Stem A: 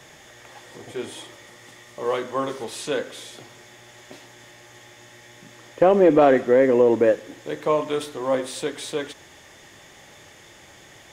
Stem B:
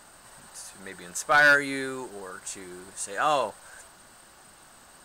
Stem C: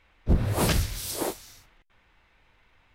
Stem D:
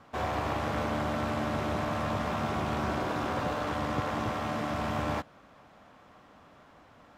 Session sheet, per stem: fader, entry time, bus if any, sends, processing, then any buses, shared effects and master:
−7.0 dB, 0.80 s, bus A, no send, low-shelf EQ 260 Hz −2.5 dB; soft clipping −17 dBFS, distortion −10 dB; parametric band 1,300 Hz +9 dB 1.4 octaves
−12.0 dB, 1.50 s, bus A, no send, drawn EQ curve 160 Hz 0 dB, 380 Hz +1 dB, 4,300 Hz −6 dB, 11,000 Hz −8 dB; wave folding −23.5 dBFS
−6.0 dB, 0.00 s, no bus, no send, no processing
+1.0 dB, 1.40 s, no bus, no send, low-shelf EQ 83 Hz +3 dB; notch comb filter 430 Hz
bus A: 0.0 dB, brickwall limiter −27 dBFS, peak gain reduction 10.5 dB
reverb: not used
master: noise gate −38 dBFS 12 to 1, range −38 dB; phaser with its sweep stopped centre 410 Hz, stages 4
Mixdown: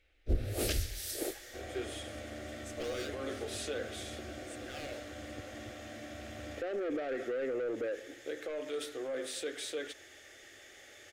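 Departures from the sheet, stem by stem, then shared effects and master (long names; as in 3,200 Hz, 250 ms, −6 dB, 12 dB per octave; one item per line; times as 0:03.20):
stem D +1.0 dB → −9.0 dB
master: missing noise gate −38 dBFS 12 to 1, range −38 dB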